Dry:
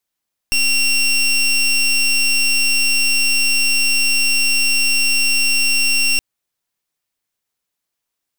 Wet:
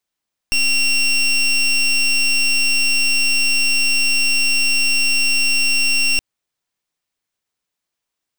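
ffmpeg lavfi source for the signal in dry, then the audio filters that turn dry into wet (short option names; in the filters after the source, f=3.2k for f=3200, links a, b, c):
-f lavfi -i "aevalsrc='0.178*(2*lt(mod(2740*t,1),0.22)-1)':d=5.67:s=44100"
-af "equalizer=f=14k:w=0.89:g=-8.5"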